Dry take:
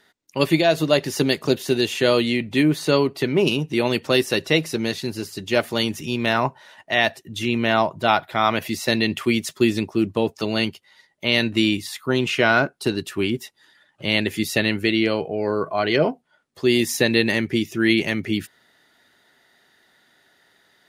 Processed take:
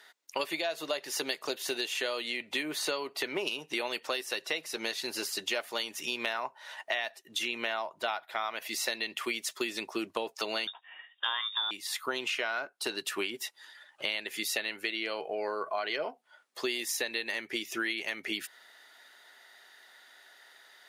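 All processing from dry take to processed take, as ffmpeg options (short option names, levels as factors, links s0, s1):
-filter_complex "[0:a]asettb=1/sr,asplit=3[s0][s1][s2];[s0]atrim=end=10.674[s3];[s1]atrim=start=10.67:end=11.71,asetpts=PTS-STARTPTS,afade=t=in:d=0.004:c=qsin,afade=t=out:st=1.036:d=0.004:c=qsin,equalizer=f=1000:w=3:g=11.5,asplit=2[s4][s5];[s5]adelay=21,volume=0.224[s6];[s4][s6]amix=inputs=2:normalize=0,atrim=end_sample=45864,lowpass=f=3200:t=q:w=0.5098,lowpass=f=3200:t=q:w=0.6013,lowpass=f=3200:t=q:w=0.9,lowpass=f=3200:t=q:w=2.563,afreqshift=-3800[s7];[s2]atrim=start=11.706[s8];[s3][s7]acrossfade=d=0.004:c1=hsin:c2=qsin[s9];[s9][s8]acrossfade=d=0.004:c1=qsin:c2=hsin,highpass=650,acompressor=threshold=0.0224:ratio=12,volume=1.5"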